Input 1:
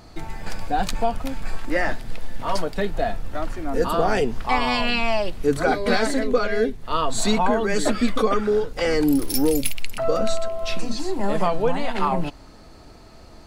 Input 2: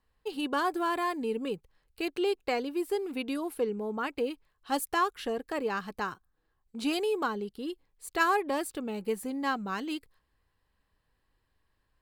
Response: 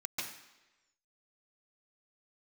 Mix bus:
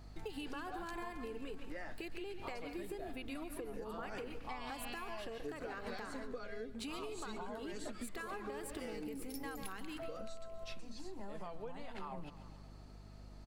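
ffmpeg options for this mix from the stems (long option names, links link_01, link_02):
-filter_complex "[0:a]volume=-14.5dB,asplit=2[link_01][link_02];[link_02]volume=-19dB[link_03];[1:a]equalizer=frequency=1800:width=1.5:gain=4,acompressor=threshold=-39dB:ratio=6,volume=1.5dB,asplit=3[link_04][link_05][link_06];[link_05]volume=-7dB[link_07];[link_06]apad=whole_len=593685[link_08];[link_01][link_08]sidechaincompress=threshold=-41dB:ratio=8:attack=16:release=254[link_09];[2:a]atrim=start_sample=2205[link_10];[link_07][link_10]afir=irnorm=-1:irlink=0[link_11];[link_03]aecho=0:1:134|268|402|536|670|804|938|1072:1|0.56|0.314|0.176|0.0983|0.0551|0.0308|0.0173[link_12];[link_09][link_04][link_11][link_12]amix=inputs=4:normalize=0,aeval=exprs='val(0)+0.00224*(sin(2*PI*50*n/s)+sin(2*PI*2*50*n/s)/2+sin(2*PI*3*50*n/s)/3+sin(2*PI*4*50*n/s)/4+sin(2*PI*5*50*n/s)/5)':channel_layout=same,acompressor=threshold=-40dB:ratio=10"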